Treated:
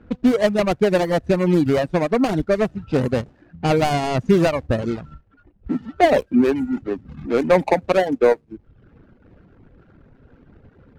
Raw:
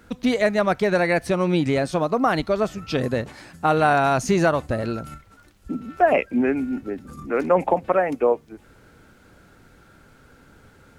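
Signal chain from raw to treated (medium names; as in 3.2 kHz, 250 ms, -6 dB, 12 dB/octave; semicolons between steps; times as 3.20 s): median filter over 41 samples; level-controlled noise filter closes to 2.9 kHz, open at -18.5 dBFS; reverb removal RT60 0.73 s; trim +6 dB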